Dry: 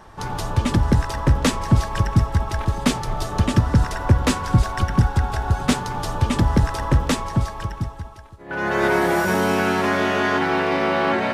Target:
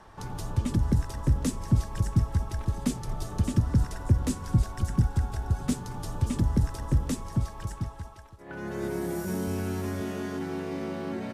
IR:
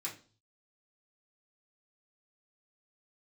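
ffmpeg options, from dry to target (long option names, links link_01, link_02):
-filter_complex "[0:a]asettb=1/sr,asplit=3[link_01][link_02][link_03];[link_01]atrim=end=9.474[link_04];[link_02]atrim=start=9.47:end=10.01,asetpts=PTS-STARTPTS,afade=type=in:duration=0.004:curve=qsin,afade=type=out:start_time=0.536:duration=0.004:curve=qsin,lowshelf=frequency=120:width_type=q:width=1.5:gain=7[link_05];[link_03]atrim=start=10.006[link_06];[link_04][link_05]acrossfade=duration=0.004:curve1=hsin:curve2=qsin[link_07];[link_07][link_06]acrossfade=duration=0.004:curve1=qsin:curve2=hsin,acrossover=split=380|6000[link_08][link_09][link_10];[link_09]acompressor=threshold=-36dB:ratio=6[link_11];[link_10]aecho=1:1:578:0.376[link_12];[link_08][link_11][link_12]amix=inputs=3:normalize=0,aresample=32000,aresample=44100,volume=-6.5dB"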